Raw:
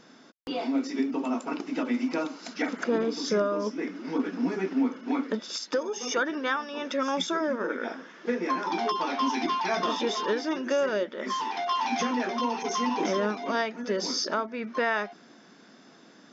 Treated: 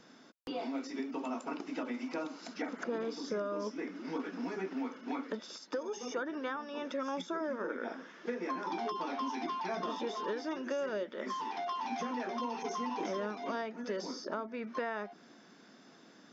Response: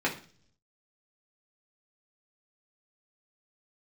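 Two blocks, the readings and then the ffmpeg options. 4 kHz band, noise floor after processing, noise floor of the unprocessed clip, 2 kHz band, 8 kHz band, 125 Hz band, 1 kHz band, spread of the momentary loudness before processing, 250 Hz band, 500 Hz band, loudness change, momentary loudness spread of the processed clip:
−13.0 dB, −59 dBFS, −55 dBFS, −10.5 dB, can't be measured, −9.0 dB, −8.5 dB, 5 LU, −9.5 dB, −8.5 dB, −9.0 dB, 6 LU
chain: -filter_complex "[0:a]acrossover=split=460|1400[link_01][link_02][link_03];[link_01]acompressor=threshold=-35dB:ratio=4[link_04];[link_02]acompressor=threshold=-33dB:ratio=4[link_05];[link_03]acompressor=threshold=-44dB:ratio=4[link_06];[link_04][link_05][link_06]amix=inputs=3:normalize=0,volume=-4.5dB"

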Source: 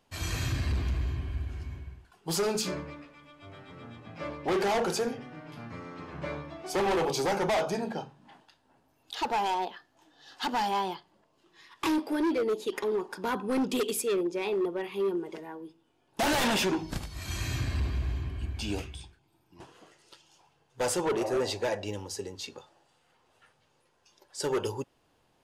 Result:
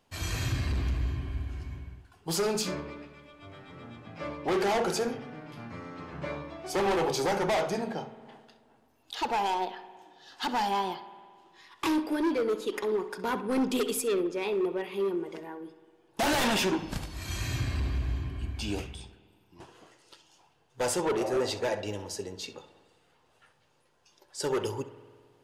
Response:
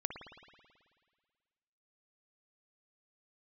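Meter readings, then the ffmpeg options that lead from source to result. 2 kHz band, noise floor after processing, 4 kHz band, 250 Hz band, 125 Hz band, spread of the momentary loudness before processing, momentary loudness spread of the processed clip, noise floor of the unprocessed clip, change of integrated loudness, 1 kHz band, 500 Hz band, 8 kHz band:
0.0 dB, −67 dBFS, 0.0 dB, +0.5 dB, 0.0 dB, 16 LU, 17 LU, −70 dBFS, 0.0 dB, +0.5 dB, +0.5 dB, 0.0 dB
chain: -filter_complex "[0:a]asplit=2[link_01][link_02];[1:a]atrim=start_sample=2205,highshelf=frequency=7800:gain=-11.5,adelay=65[link_03];[link_02][link_03]afir=irnorm=-1:irlink=0,volume=-12.5dB[link_04];[link_01][link_04]amix=inputs=2:normalize=0"

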